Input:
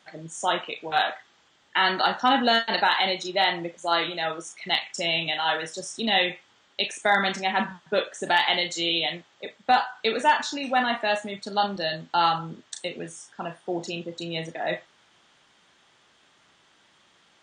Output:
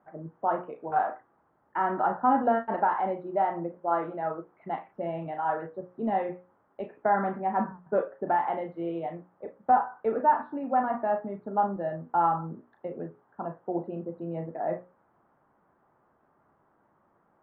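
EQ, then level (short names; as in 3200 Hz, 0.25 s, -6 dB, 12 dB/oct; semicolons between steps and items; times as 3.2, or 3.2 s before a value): LPF 1200 Hz 24 dB/oct; air absorption 190 m; notches 60/120/180/240/300/360/420/480/540 Hz; 0.0 dB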